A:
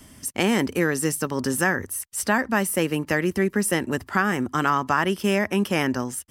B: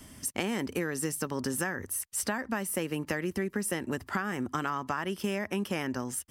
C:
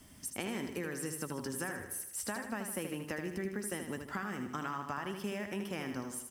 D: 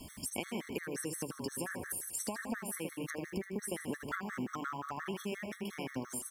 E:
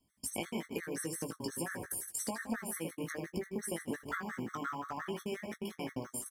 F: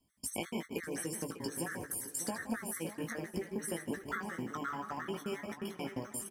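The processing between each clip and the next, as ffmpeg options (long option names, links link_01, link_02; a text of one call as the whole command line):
ffmpeg -i in.wav -af "acompressor=threshold=-26dB:ratio=6,volume=-2dB" out.wav
ffmpeg -i in.wav -af "acrusher=bits=9:mix=0:aa=0.000001,aecho=1:1:78|156|234|312|390|468:0.447|0.237|0.125|0.0665|0.0352|0.0187,volume=-7.5dB" out.wav
ffmpeg -i in.wav -af "bandreject=frequency=50:width_type=h:width=6,bandreject=frequency=100:width_type=h:width=6,bandreject=frequency=150:width_type=h:width=6,acompressor=threshold=-43dB:ratio=6,afftfilt=real='re*gt(sin(2*PI*5.7*pts/sr)*(1-2*mod(floor(b*sr/1024/1100),2)),0)':imag='im*gt(sin(2*PI*5.7*pts/sr)*(1-2*mod(floor(b*sr/1024/1100),2)),0)':win_size=1024:overlap=0.75,volume=10dB" out.wav
ffmpeg -i in.wav -filter_complex "[0:a]bandreject=frequency=2700:width=9.9,agate=range=-28dB:threshold=-42dB:ratio=16:detection=peak,asplit=2[link_01][link_02];[link_02]adelay=18,volume=-7dB[link_03];[link_01][link_03]amix=inputs=2:normalize=0" out.wav
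ffmpeg -i in.wav -filter_complex "[0:a]asplit=2[link_01][link_02];[link_02]adelay=598,lowpass=frequency=4700:poles=1,volume=-12.5dB,asplit=2[link_03][link_04];[link_04]adelay=598,lowpass=frequency=4700:poles=1,volume=0.38,asplit=2[link_05][link_06];[link_06]adelay=598,lowpass=frequency=4700:poles=1,volume=0.38,asplit=2[link_07][link_08];[link_08]adelay=598,lowpass=frequency=4700:poles=1,volume=0.38[link_09];[link_01][link_03][link_05][link_07][link_09]amix=inputs=5:normalize=0" out.wav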